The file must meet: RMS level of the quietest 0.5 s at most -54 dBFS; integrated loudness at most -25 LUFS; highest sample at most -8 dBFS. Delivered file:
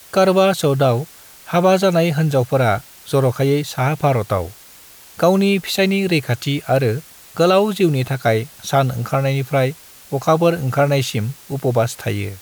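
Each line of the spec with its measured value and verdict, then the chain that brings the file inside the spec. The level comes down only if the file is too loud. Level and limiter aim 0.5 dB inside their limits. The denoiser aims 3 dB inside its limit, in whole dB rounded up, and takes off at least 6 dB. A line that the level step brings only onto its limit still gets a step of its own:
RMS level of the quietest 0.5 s -43 dBFS: fail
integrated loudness -18.0 LUFS: fail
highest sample -4.0 dBFS: fail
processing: noise reduction 7 dB, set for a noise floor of -43 dBFS; trim -7.5 dB

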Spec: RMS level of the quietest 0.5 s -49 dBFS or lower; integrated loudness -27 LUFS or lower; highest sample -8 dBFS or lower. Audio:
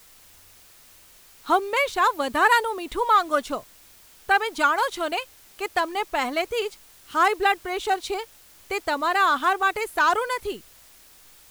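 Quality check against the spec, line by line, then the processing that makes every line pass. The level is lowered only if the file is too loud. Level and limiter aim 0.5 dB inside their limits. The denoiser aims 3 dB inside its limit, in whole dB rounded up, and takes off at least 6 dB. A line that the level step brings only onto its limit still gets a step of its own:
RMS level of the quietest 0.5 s -52 dBFS: pass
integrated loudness -23.5 LUFS: fail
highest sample -7.0 dBFS: fail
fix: trim -4 dB

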